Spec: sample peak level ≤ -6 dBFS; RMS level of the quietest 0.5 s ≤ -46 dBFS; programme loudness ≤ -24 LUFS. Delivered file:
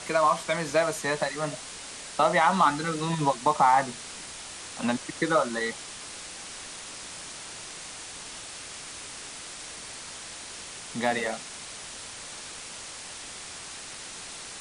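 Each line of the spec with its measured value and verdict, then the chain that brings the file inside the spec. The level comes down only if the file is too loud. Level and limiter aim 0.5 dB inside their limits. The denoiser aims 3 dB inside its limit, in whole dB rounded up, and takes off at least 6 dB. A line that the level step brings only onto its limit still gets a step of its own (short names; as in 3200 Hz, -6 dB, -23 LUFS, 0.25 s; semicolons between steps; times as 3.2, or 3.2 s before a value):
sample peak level -8.5 dBFS: OK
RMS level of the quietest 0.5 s -41 dBFS: fail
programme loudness -29.5 LUFS: OK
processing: denoiser 8 dB, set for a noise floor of -41 dBFS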